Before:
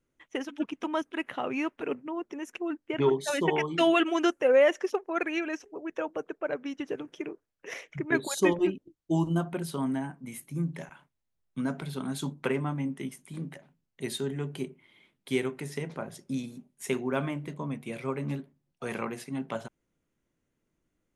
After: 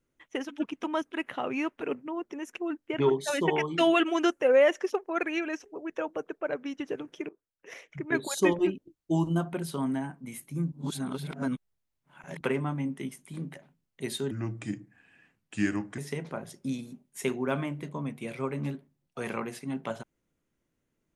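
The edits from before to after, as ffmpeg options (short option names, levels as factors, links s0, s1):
-filter_complex "[0:a]asplit=6[s0][s1][s2][s3][s4][s5];[s0]atrim=end=7.29,asetpts=PTS-STARTPTS,afade=t=out:st=7.286:d=0.004:c=hsin:silence=0.149624[s6];[s1]atrim=start=7.29:end=10.722,asetpts=PTS-STARTPTS,afade=t=in:d=1.07:silence=0.149624[s7];[s2]atrim=start=10.718:end=12.412,asetpts=PTS-STARTPTS,areverse[s8];[s3]atrim=start=12.408:end=14.314[s9];[s4]atrim=start=14.31:end=15.63,asetpts=PTS-STARTPTS,asetrate=34839,aresample=44100,atrim=end_sample=73686,asetpts=PTS-STARTPTS[s10];[s5]atrim=start=15.626[s11];[s6][s7]concat=n=2:v=0:a=1[s12];[s12][s8]acrossfade=d=0.004:c1=hsin:c2=hsin[s13];[s13][s9]acrossfade=d=0.004:c1=hsin:c2=hsin[s14];[s14][s10]acrossfade=d=0.004:c1=hsin:c2=hsin[s15];[s15][s11]acrossfade=d=0.004:c1=hsin:c2=hsin"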